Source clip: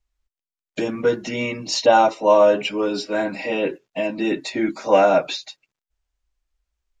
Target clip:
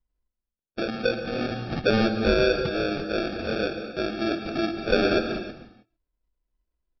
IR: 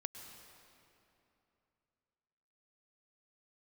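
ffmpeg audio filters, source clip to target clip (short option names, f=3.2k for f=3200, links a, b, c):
-filter_complex "[0:a]acompressor=threshold=-22dB:ratio=1.5,aresample=11025,acrusher=samples=11:mix=1:aa=0.000001,aresample=44100[a];[1:a]atrim=start_sample=2205,afade=t=out:st=0.37:d=0.01,atrim=end_sample=16758[b];[a][b]afir=irnorm=-1:irlink=0"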